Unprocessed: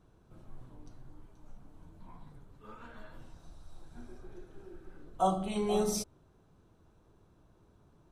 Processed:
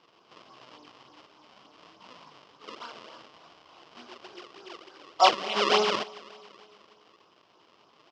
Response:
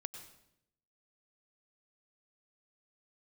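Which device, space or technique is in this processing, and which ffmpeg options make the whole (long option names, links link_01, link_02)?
circuit-bent sampling toy: -filter_complex "[0:a]asettb=1/sr,asplit=3[link_01][link_02][link_03];[link_01]atrim=end=4.844[link_04];[link_02]atrim=start=4.84:end=5.55,asetpts=PTS-STARTPTS,afade=type=in:duration=0.004:curve=qsin,afade=type=out:start_time=0.706:duration=0.004:curve=qsin,equalizer=frequency=190:width_type=o:width=0.54:gain=-9[link_05];[link_03]atrim=start=5.546[link_06];[link_04][link_05]acrossfade=duration=0.004:curve1=hsin:curve2=qsin[link_07];[link_07][link_06]acrossfade=duration=0.004:curve1=qsin:curve2=hsin,aecho=1:1:280|560|840|1120:0.075|0.0427|0.0244|0.0139,acrusher=samples=33:mix=1:aa=0.000001:lfo=1:lforange=52.8:lforate=3.4,highpass=460,equalizer=frequency=1100:width_type=q:width=4:gain=8,equalizer=frequency=1700:width_type=q:width=4:gain=-3,equalizer=frequency=3000:width_type=q:width=4:gain=10,equalizer=frequency=5100:width_type=q:width=4:gain=8,lowpass=frequency=5500:width=0.5412,lowpass=frequency=5500:width=1.3066,volume=8.5dB"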